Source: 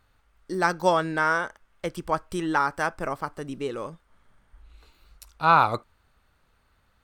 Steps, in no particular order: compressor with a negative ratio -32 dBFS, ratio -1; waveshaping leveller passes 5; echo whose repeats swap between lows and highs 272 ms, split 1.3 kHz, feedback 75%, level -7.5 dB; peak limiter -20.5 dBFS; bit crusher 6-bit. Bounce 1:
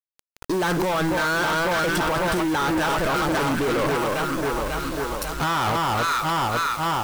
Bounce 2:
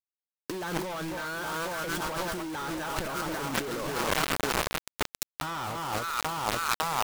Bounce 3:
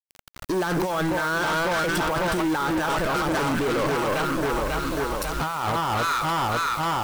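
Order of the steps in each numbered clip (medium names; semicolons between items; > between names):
echo whose repeats swap between lows and highs > peak limiter > compressor with a negative ratio > waveshaping leveller > bit crusher; echo whose repeats swap between lows and highs > bit crusher > peak limiter > waveshaping leveller > compressor with a negative ratio; echo whose repeats swap between lows and highs > compressor with a negative ratio > waveshaping leveller > bit crusher > peak limiter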